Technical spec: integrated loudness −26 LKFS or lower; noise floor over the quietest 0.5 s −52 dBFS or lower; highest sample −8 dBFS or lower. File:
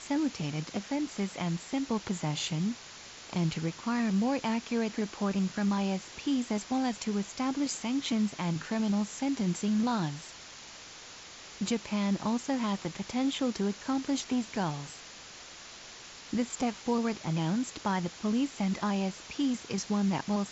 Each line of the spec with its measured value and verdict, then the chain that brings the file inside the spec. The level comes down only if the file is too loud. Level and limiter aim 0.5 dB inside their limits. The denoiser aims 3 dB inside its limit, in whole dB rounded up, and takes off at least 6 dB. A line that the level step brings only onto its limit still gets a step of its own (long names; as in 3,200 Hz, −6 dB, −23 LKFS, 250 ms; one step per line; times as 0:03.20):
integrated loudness −32.0 LKFS: in spec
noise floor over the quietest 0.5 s −48 dBFS: out of spec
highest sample −18.0 dBFS: in spec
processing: broadband denoise 7 dB, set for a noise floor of −48 dBFS